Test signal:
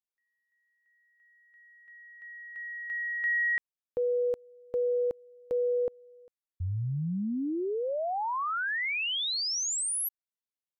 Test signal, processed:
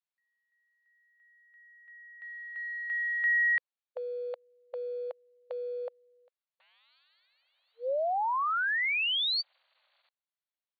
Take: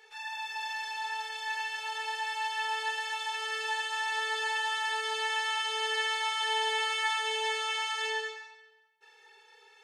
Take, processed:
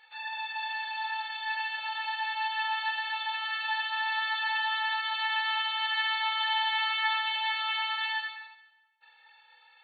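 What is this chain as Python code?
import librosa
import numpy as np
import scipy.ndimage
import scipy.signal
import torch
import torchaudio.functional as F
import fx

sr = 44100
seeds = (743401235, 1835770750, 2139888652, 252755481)

p1 = fx.quant_dither(x, sr, seeds[0], bits=8, dither='none')
p2 = x + F.gain(torch.from_numpy(p1), -12.0).numpy()
y = fx.brickwall_bandpass(p2, sr, low_hz=500.0, high_hz=4600.0)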